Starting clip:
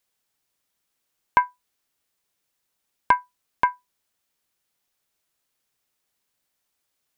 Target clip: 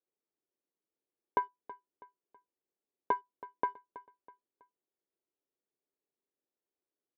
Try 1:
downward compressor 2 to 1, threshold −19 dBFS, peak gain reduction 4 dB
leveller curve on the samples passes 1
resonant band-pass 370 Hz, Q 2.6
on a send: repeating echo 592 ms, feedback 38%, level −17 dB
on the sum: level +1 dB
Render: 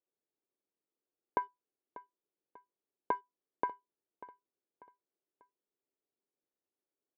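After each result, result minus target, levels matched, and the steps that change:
echo 267 ms late; downward compressor: peak gain reduction +4 dB
change: repeating echo 325 ms, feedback 38%, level −17 dB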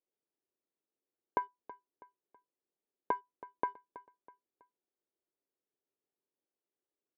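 downward compressor: peak gain reduction +4 dB
remove: downward compressor 2 to 1, threshold −19 dBFS, peak gain reduction 4 dB

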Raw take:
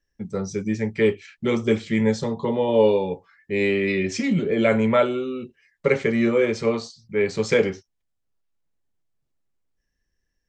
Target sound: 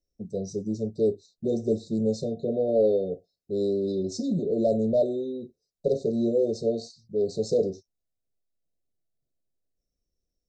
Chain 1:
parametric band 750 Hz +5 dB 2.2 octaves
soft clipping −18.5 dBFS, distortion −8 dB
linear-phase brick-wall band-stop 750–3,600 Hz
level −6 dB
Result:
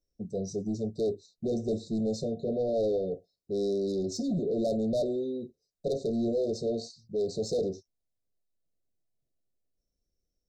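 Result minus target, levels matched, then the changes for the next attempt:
soft clipping: distortion +11 dB
change: soft clipping −7.5 dBFS, distortion −19 dB

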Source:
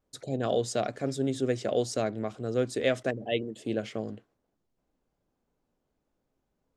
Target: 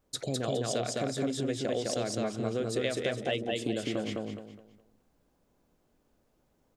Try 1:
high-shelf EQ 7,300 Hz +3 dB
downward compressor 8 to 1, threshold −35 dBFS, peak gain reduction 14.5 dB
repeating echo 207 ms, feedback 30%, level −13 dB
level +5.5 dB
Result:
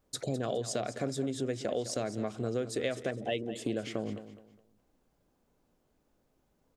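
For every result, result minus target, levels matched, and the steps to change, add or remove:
echo-to-direct −11.5 dB; 4,000 Hz band −3.0 dB
change: repeating echo 207 ms, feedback 30%, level −1.5 dB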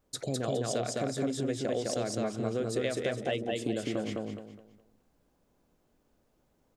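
4,000 Hz band −3.0 dB
add after downward compressor: dynamic equaliser 3,300 Hz, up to +4 dB, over −58 dBFS, Q 1.2

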